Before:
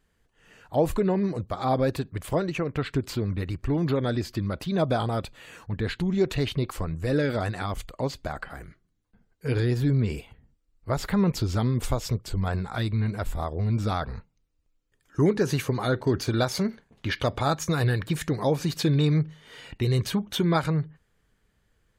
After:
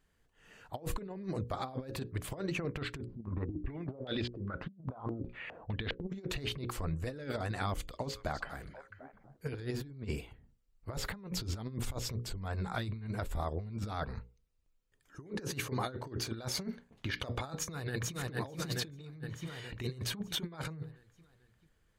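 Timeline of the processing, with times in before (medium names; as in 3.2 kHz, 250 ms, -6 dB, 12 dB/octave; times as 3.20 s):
3.05–6.10 s: step-sequenced low-pass 4.9 Hz 210–3300 Hz
7.66–9.83 s: repeats whose band climbs or falls 248 ms, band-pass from 5 kHz, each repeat -1.4 oct, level -9.5 dB
17.56–18.16 s: echo throw 440 ms, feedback 55%, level -2 dB
whole clip: hum notches 60/120/180/240/300/360/420/480/540 Hz; compressor with a negative ratio -29 dBFS, ratio -0.5; trim -8 dB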